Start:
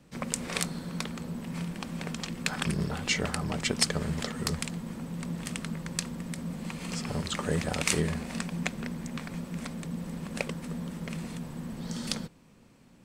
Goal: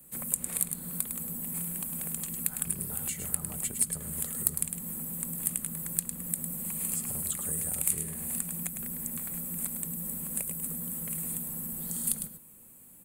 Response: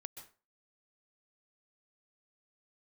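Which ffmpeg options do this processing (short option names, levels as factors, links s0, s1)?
-filter_complex "[0:a]aecho=1:1:104:0.335,acrossover=split=190|7400[s0][s1][s2];[s0]acompressor=threshold=0.0158:ratio=4[s3];[s1]acompressor=threshold=0.01:ratio=4[s4];[s2]acompressor=threshold=0.00355:ratio=4[s5];[s3][s4][s5]amix=inputs=3:normalize=0,aexciter=amount=15.4:drive=10:freq=8600,volume=0.531"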